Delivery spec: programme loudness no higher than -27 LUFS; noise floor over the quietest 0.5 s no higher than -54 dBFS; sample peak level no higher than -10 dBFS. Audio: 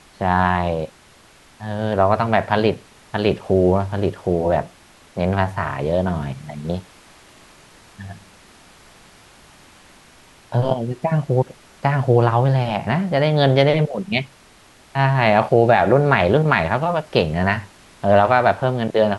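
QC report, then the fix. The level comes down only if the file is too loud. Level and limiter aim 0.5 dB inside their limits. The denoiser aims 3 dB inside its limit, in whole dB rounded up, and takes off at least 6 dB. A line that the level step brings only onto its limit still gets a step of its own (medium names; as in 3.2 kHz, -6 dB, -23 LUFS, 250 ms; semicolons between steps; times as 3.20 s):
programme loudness -19.0 LUFS: fail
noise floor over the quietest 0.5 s -50 dBFS: fail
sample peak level -2.0 dBFS: fail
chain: trim -8.5 dB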